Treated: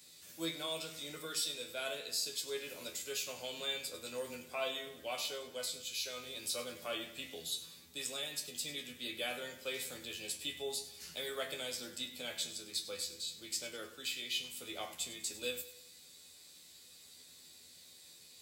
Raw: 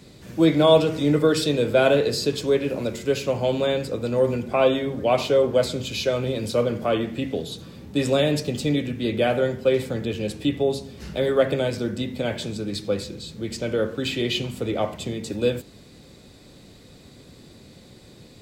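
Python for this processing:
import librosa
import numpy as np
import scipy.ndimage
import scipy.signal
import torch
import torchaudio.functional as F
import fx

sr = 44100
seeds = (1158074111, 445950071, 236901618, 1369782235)

y = librosa.effects.preemphasis(x, coef=0.97, zi=[0.0])
y = fx.rider(y, sr, range_db=3, speed_s=0.5)
y = fx.comb_fb(y, sr, f0_hz=83.0, decay_s=0.2, harmonics='all', damping=0.0, mix_pct=90)
y = fx.echo_feedback(y, sr, ms=99, feedback_pct=48, wet_db=-15.0)
y = y * 10.0 ** (4.5 / 20.0)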